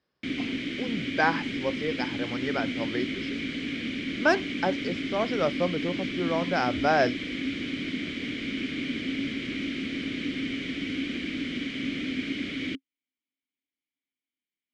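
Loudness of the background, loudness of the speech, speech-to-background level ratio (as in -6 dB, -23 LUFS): -31.5 LUFS, -29.0 LUFS, 2.5 dB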